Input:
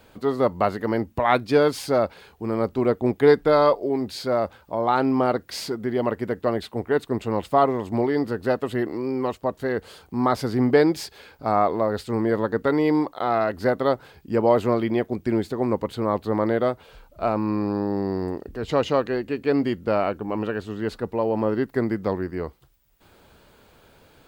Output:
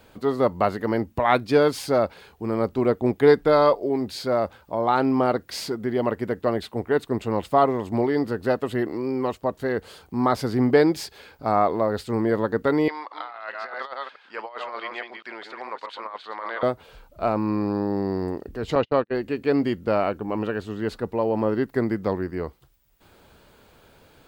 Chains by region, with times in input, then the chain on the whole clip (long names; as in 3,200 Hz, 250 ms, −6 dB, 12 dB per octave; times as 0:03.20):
0:12.88–0:16.63: delay that plays each chunk backwards 213 ms, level −6 dB + flat-topped band-pass 2,100 Hz, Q 0.65 + compressor whose output falls as the input rises −32 dBFS, ratio −0.5
0:18.75–0:19.15: low-pass filter 4,300 Hz 24 dB per octave + noise gate −26 dBFS, range −42 dB
whole clip: no processing